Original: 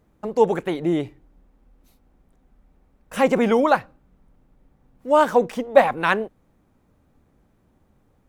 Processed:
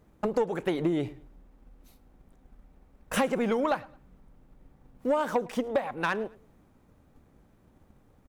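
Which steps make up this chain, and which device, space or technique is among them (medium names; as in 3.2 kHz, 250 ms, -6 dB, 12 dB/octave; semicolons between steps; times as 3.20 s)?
drum-bus smash (transient shaper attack +6 dB, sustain +2 dB; compression 16:1, threshold -21 dBFS, peak gain reduction 21 dB; saturation -17 dBFS, distortion -17 dB); feedback delay 108 ms, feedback 31%, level -22.5 dB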